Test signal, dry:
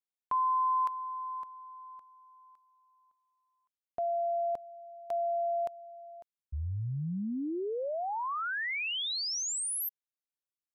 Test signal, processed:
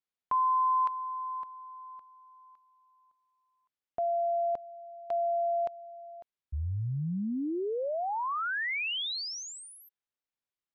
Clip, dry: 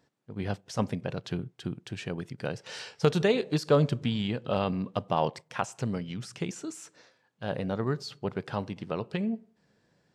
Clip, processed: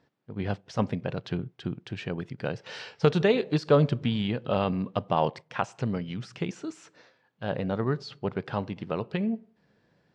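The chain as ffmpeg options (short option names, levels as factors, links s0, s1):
-af "lowpass=4100,volume=1.26"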